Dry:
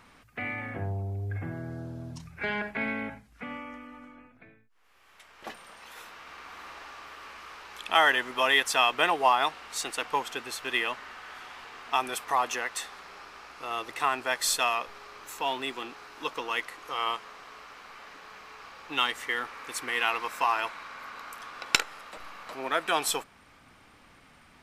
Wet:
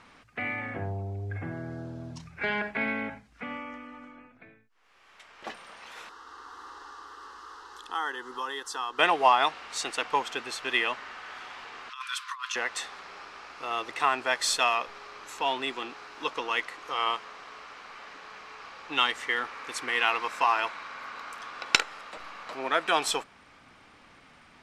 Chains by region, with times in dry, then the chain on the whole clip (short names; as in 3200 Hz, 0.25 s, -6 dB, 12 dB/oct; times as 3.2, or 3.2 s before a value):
6.09–8.99 compressor 1.5:1, threshold -40 dBFS + fixed phaser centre 630 Hz, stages 6
11.89–12.56 rippled Chebyshev high-pass 1000 Hz, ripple 6 dB + negative-ratio compressor -36 dBFS, ratio -0.5
whole clip: LPF 7200 Hz 12 dB/oct; low shelf 140 Hz -6 dB; gain +2 dB